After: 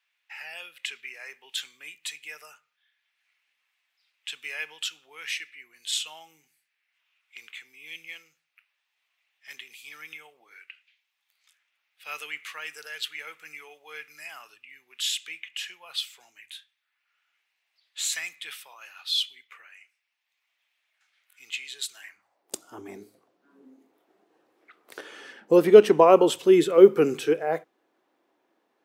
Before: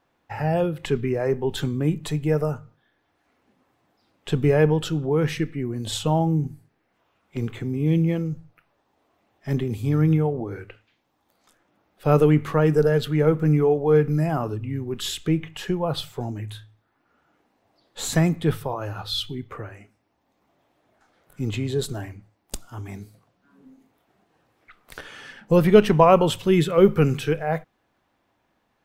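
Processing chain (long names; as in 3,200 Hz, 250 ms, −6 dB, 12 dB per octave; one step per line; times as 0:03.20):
dynamic equaliser 7,600 Hz, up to +5 dB, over −49 dBFS, Q 0.74
high-pass filter sweep 2,400 Hz → 350 Hz, 0:22.01–0:22.52
level −4 dB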